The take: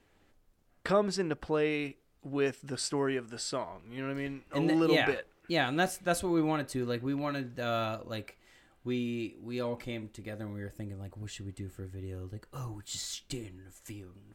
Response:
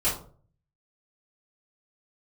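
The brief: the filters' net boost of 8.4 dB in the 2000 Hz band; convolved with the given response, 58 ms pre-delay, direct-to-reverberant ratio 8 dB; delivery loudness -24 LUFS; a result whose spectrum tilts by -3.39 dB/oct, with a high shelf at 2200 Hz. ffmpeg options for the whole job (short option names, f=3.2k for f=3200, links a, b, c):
-filter_complex "[0:a]equalizer=f=2k:t=o:g=6.5,highshelf=f=2.2k:g=7.5,asplit=2[a][b];[1:a]atrim=start_sample=2205,adelay=58[c];[b][c]afir=irnorm=-1:irlink=0,volume=-19dB[d];[a][d]amix=inputs=2:normalize=0,volume=5dB"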